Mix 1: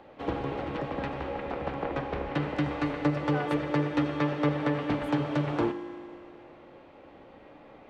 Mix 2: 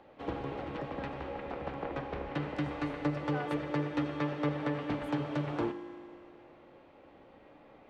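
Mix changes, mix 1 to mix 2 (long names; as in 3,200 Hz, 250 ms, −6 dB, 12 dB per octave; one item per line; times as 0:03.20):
speech −4.5 dB
first sound −5.5 dB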